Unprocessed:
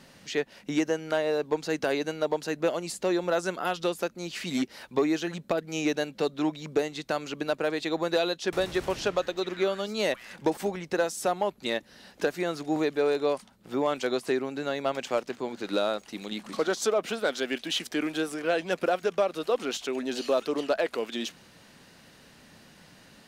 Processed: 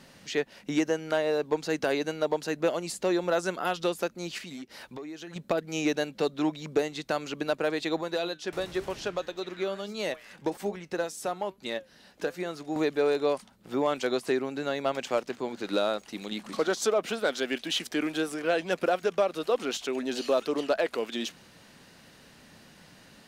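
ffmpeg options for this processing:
-filter_complex "[0:a]asettb=1/sr,asplit=3[a][b][c];[a]atrim=end=4.384[d];[b]atrim=start=4.38:end=5.36,asetpts=PTS-STARTPTS,afade=t=in:d=0.004:c=qsin,afade=t=out:st=0.976:d=0.004:c=qsin,acompressor=threshold=-40dB:ratio=4:attack=3.2:release=140:knee=1:detection=peak[e];[c]atrim=start=5.356[f];[d][e]acrossfade=d=0.004:c1=hsin:c2=qsin[g];[g][f]acrossfade=d=0.004:c1=qsin:c2=hsin,asettb=1/sr,asplit=3[h][i][j];[h]atrim=end=8.014[k];[i]atrim=start=8.01:end=12.76,asetpts=PTS-STARTPTS,afade=t=in:d=0.004:c=qsin,afade=t=out:st=4.746:d=0.004:c=qsin,flanger=delay=4.6:depth=2.4:regen=84:speed=1.1:shape=triangular[l];[j]atrim=start=12.756[m];[k][l]acrossfade=d=0.004:c1=hsin:c2=qsin[n];[n][m]acrossfade=d=0.004:c1=qsin:c2=hsin"

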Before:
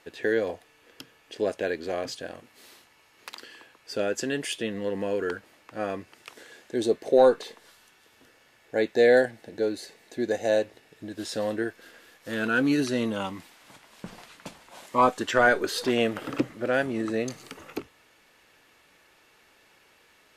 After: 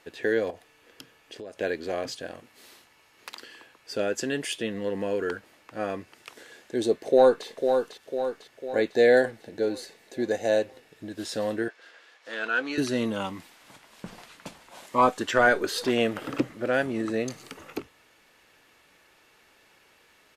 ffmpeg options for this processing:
-filter_complex "[0:a]asettb=1/sr,asplit=3[a][b][c];[a]atrim=end=0.504[d];[b]atrim=start=0.5:end=1.6,asetpts=PTS-STARTPTS,afade=t=in:d=0.004:c=qsin,afade=t=out:st=1.096:d=0.004:c=qsin,acompressor=threshold=-37dB:ratio=6:attack=3.2:release=140:knee=1:detection=peak[e];[c]atrim=start=1.596[f];[d][e]acrossfade=d=0.004:c1=hsin:c2=qsin[g];[g][f]acrossfade=d=0.004:c1=qsin:c2=hsin,asplit=2[h][i];[i]afade=t=in:st=7.07:d=0.01,afade=t=out:st=7.47:d=0.01,aecho=0:1:500|1000|1500|2000|2500|3000|3500:0.501187|0.275653|0.151609|0.083385|0.0458618|0.025224|0.0138732[j];[h][j]amix=inputs=2:normalize=0,asettb=1/sr,asplit=3[k][l][m];[k]atrim=end=11.684[n];[l]atrim=start=11.68:end=12.78,asetpts=PTS-STARTPTS,afade=t=in:d=0.004:c=qsin,afade=t=out:st=1.096:d=0.004:c=qsin,highpass=570,lowpass=5.4k[o];[m]atrim=start=12.776[p];[n][o]acrossfade=d=0.004:c1=hsin:c2=qsin[q];[q][p]acrossfade=d=0.004:c1=qsin:c2=hsin"

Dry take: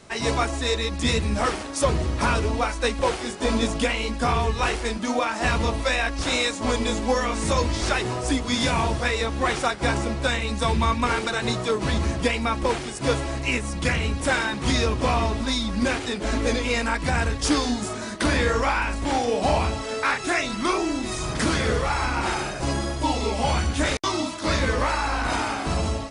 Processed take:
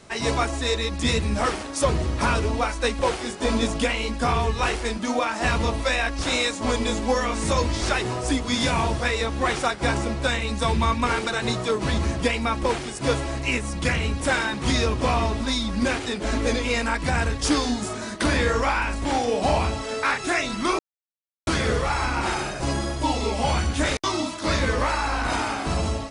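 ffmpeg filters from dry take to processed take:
-filter_complex "[0:a]asplit=3[a][b][c];[a]atrim=end=20.79,asetpts=PTS-STARTPTS,afade=t=out:st=20.786:d=0.004:c=hsin[d];[b]atrim=start=20.79:end=21.47,asetpts=PTS-STARTPTS,volume=0[e];[c]atrim=start=21.47,asetpts=PTS-STARTPTS,afade=t=in:d=0.004:c=hsin[f];[d][e][f]concat=n=3:v=0:a=1"

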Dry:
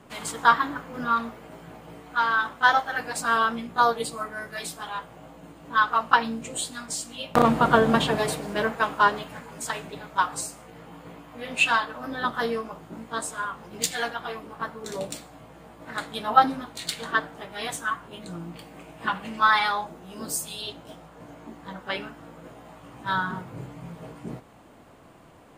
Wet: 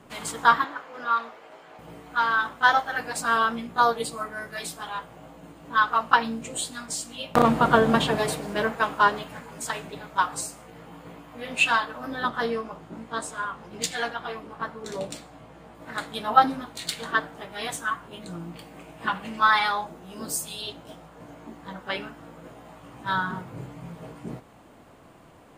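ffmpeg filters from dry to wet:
-filter_complex "[0:a]asettb=1/sr,asplit=3[a][b][c];[a]atrim=end=0.644[d];[b]atrim=start=0.64:end=1.79,asetpts=PTS-STARTPTS,afade=t=in:d=0.004:c=qsin,afade=t=out:st=1.146:d=0.004:c=qsin,acrossover=split=390 6500:gain=0.0891 1 0.224[e][f][g];[e][f][g]amix=inputs=3:normalize=0[h];[c]atrim=start=1.786[i];[d][h]acrossfade=d=0.004:c1=hsin:c2=qsin[j];[j][i]acrossfade=d=0.004:c1=qsin:c2=hsin,asettb=1/sr,asplit=3[k][l][m];[k]atrim=end=12.284[n];[l]atrim=start=12.28:end=15.75,asetpts=PTS-STARTPTS,afade=t=in:d=0.004:c=qsin,afade=t=out:st=3.466:d=0.004:c=qsin,highshelf=f=11k:g=-12[o];[m]atrim=start=15.746[p];[n][o]acrossfade=d=0.004:c1=hsin:c2=qsin[q];[q][p]acrossfade=d=0.004:c1=qsin:c2=hsin"

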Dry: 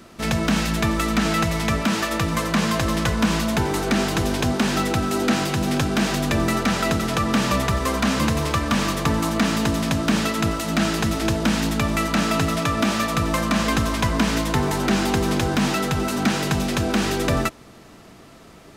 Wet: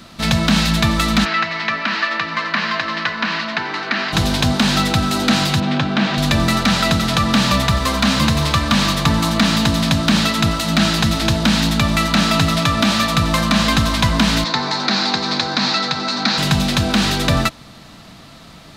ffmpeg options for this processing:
-filter_complex "[0:a]asplit=3[a][b][c];[a]afade=t=out:st=1.24:d=0.02[d];[b]highpass=430,equalizer=f=530:t=q:w=4:g=-8,equalizer=f=790:t=q:w=4:g=-6,equalizer=f=1.8k:t=q:w=4:g=5,equalizer=f=3.5k:t=q:w=4:g=-8,lowpass=f=4.2k:w=0.5412,lowpass=f=4.2k:w=1.3066,afade=t=in:st=1.24:d=0.02,afade=t=out:st=4.12:d=0.02[e];[c]afade=t=in:st=4.12:d=0.02[f];[d][e][f]amix=inputs=3:normalize=0,asettb=1/sr,asplit=3[g][h][i];[g]atrim=end=5.604[j];[h]atrim=start=5.6:end=6.18,asetpts=PTS-STARTPTS,afade=t=in:d=0.004:c=qsin,afade=t=out:st=0.576:d=0.004:c=qsin,highpass=150,lowpass=3k[k];[i]atrim=start=6.176[l];[j][k]acrossfade=d=0.004:c1=hsin:c2=qsin[m];[m][l]acrossfade=d=0.004:c1=qsin:c2=hsin,asettb=1/sr,asplit=3[n][o][p];[n]atrim=end=7.424[q];[o]atrim=start=7.42:end=8.41,asetpts=PTS-STARTPTS,afade=t=in:d=0.004:c=qsin,afade=t=out:st=0.986:d=0.004:c=qsin,aeval=exprs='sgn(val(0))*max(abs(val(0))-0.00447,0)':c=same[r];[p]atrim=start=8.406[s];[q][r]acrossfade=d=0.004:c1=hsin:c2=qsin[t];[t][s]acrossfade=d=0.004:c1=qsin:c2=hsin,asettb=1/sr,asplit=3[u][v][w];[u]atrim=end=14.444[x];[v]atrim=start=14.44:end=16.38,asetpts=PTS-STARTPTS,afade=t=in:d=0.004:c=qsin,afade=t=out:st=1.936:d=0.004:c=qsin,highpass=300,equalizer=f=360:t=q:w=4:g=-3,equalizer=f=630:t=q:w=4:g=-3,equalizer=f=3k:t=q:w=4:g=-8,equalizer=f=4.3k:t=q:w=4:g=7,lowpass=f=5.8k:w=0.5412,lowpass=f=5.8k:w=1.3066[y];[w]atrim=start=16.376[z];[x][y]acrossfade=d=0.004:c1=hsin:c2=qsin[aa];[aa][z]acrossfade=d=0.004:c1=qsin:c2=hsin,equalizer=f=11k:t=o:w=2.3:g=-2.5,acontrast=38,equalizer=f=160:t=o:w=0.67:g=3,equalizer=f=400:t=o:w=0.67:g=-10,equalizer=f=4k:t=o:w=0.67:g=9"

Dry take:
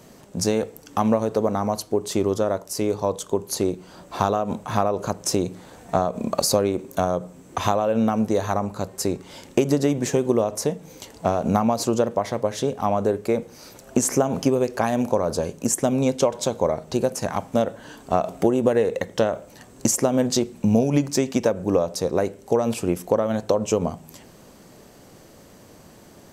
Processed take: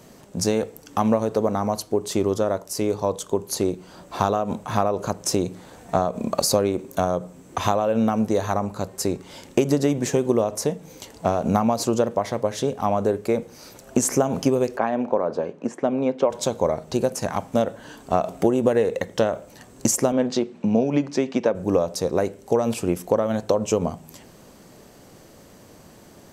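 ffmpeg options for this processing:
-filter_complex "[0:a]asplit=3[a][b][c];[a]afade=t=out:st=14.76:d=0.02[d];[b]highpass=230,lowpass=2.1k,afade=t=in:st=14.76:d=0.02,afade=t=out:st=16.29:d=0.02[e];[c]afade=t=in:st=16.29:d=0.02[f];[d][e][f]amix=inputs=3:normalize=0,asettb=1/sr,asplit=3[g][h][i];[g]atrim=end=20.124[j];[h]atrim=start=20.12:end=21.55,asetpts=PTS-STARTPTS,afade=t=in:d=0.004:c=qsin,afade=t=out:st=1.426:d=0.004:c=qsin,highpass=180,lowpass=3.7k[k];[i]atrim=start=21.546[l];[j][k]acrossfade=d=0.004:c1=hsin:c2=qsin[m];[m][l]acrossfade=d=0.004:c1=qsin:c2=hsin"

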